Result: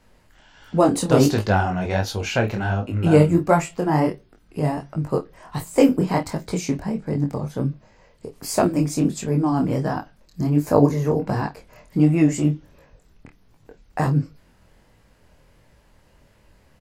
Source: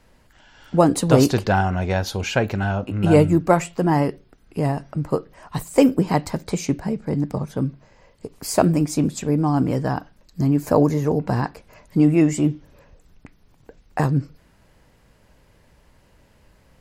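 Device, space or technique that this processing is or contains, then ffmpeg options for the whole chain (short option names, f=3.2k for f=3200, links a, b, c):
double-tracked vocal: -filter_complex "[0:a]asplit=2[a][b];[b]adelay=28,volume=-11dB[c];[a][c]amix=inputs=2:normalize=0,flanger=delay=18.5:depth=8:speed=1.4,volume=2dB"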